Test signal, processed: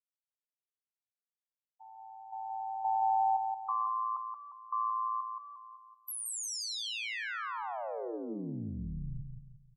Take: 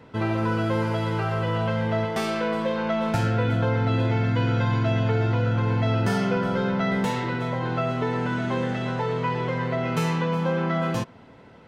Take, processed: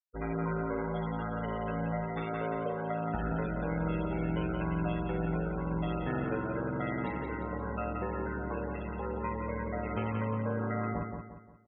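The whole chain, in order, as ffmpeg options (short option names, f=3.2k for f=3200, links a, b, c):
-af "aeval=exprs='val(0)*sin(2*PI*56*n/s)':c=same,afftfilt=real='re*gte(hypot(re,im),0.0355)':imag='im*gte(hypot(re,im),0.0355)':win_size=1024:overlap=0.75,aecho=1:1:176|352|528|704|880:0.562|0.219|0.0855|0.0334|0.013,volume=-7dB"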